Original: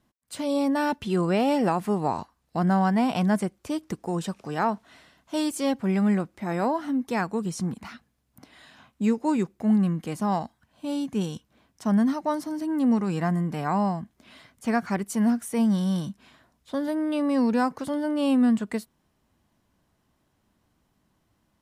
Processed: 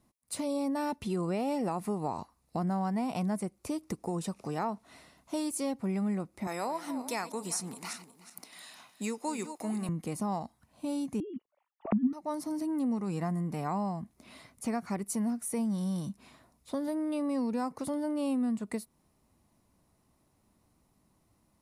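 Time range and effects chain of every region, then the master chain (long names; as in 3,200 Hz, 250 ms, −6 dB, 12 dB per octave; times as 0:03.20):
0:06.47–0:09.89: feedback delay that plays each chunk backwards 183 ms, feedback 50%, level −13 dB + high-pass filter 620 Hz 6 dB per octave + high-shelf EQ 2,200 Hz +8.5 dB
0:11.20–0:12.13: three sine waves on the formant tracks + tilt shelving filter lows +9.5 dB, about 710 Hz
whole clip: thirty-one-band graphic EQ 1,600 Hz −9 dB, 3,150 Hz −8 dB, 10,000 Hz +8 dB; downward compressor 2.5 to 1, threshold −33 dBFS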